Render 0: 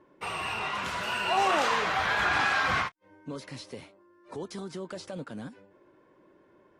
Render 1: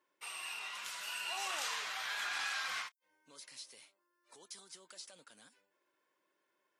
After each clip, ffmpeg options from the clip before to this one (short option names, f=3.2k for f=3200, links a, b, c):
-af "aderivative"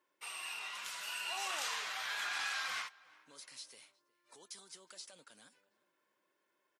-filter_complex "[0:a]asplit=2[a][b];[b]adelay=361,lowpass=f=2.3k:p=1,volume=-22dB,asplit=2[c][d];[d]adelay=361,lowpass=f=2.3k:p=1,volume=0.49,asplit=2[e][f];[f]adelay=361,lowpass=f=2.3k:p=1,volume=0.49[g];[a][c][e][g]amix=inputs=4:normalize=0"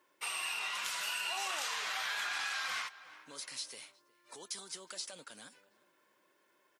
-af "acompressor=threshold=-42dB:ratio=10,volume=8.5dB"